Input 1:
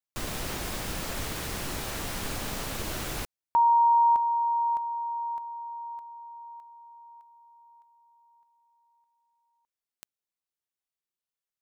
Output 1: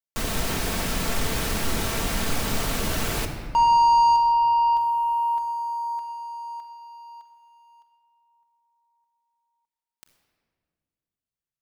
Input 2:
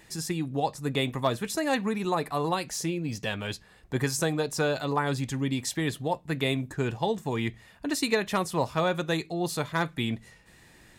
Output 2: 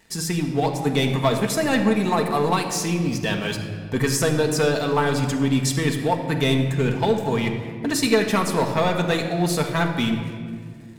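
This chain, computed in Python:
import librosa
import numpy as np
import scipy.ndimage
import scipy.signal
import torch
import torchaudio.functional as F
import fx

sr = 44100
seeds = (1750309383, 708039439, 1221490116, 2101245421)

y = fx.leveller(x, sr, passes=2)
y = fx.room_shoebox(y, sr, seeds[0], volume_m3=3500.0, walls='mixed', distance_m=1.6)
y = y * 10.0 ** (-1.5 / 20.0)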